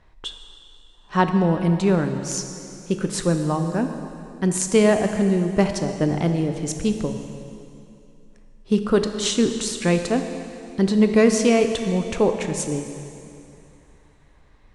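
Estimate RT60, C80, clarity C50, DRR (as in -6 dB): 2.7 s, 8.0 dB, 7.0 dB, 6.0 dB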